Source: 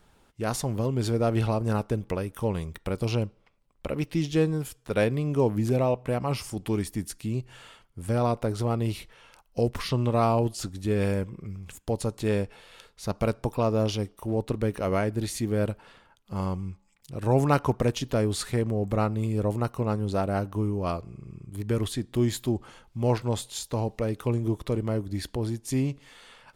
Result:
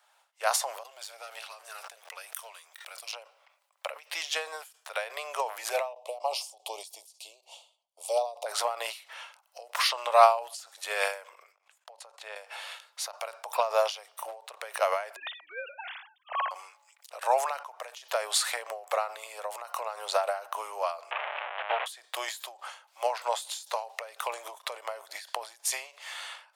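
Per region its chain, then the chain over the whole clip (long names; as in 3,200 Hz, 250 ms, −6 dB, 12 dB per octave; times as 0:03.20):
0:00.83–0:03.13: guitar amp tone stack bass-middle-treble 6-0-2 + leveller curve on the samples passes 2 + background raised ahead of every attack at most 21 dB per second
0:05.93–0:08.46: noise gate −52 dBFS, range −15 dB + Butterworth band-reject 1,600 Hz, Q 0.58 + high-shelf EQ 8,500 Hz −10 dB
0:11.52–0:12.36: output level in coarse steps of 19 dB + low-pass filter 3,000 Hz 6 dB per octave
0:15.16–0:16.51: three sine waves on the formant tracks + spectral tilt +3 dB per octave + downward compressor 5 to 1, threshold −38 dBFS
0:19.16–0:19.97: high-pass filter 55 Hz + downward compressor 4 to 1, threshold −29 dBFS
0:21.11–0:21.86: linear delta modulator 16 kbit/s, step −28.5 dBFS + saturating transformer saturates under 440 Hz
whole clip: automatic gain control gain up to 15 dB; Butterworth high-pass 610 Hz 48 dB per octave; every ending faded ahead of time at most 130 dB per second; level −1.5 dB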